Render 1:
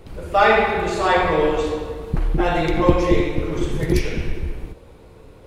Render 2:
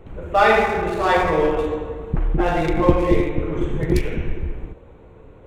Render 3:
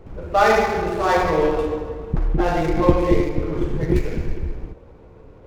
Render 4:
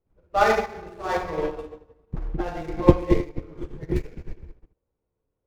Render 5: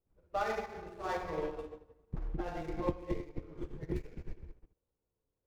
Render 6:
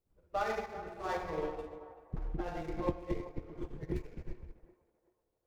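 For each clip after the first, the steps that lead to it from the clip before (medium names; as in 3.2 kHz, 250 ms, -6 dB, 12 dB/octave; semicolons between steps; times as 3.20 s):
local Wiener filter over 9 samples
median filter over 15 samples
upward expansion 2.5:1, over -35 dBFS; trim +2 dB
compression 4:1, threshold -25 dBFS, peak gain reduction 15 dB; trim -7 dB
band-passed feedback delay 385 ms, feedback 46%, band-pass 770 Hz, level -13 dB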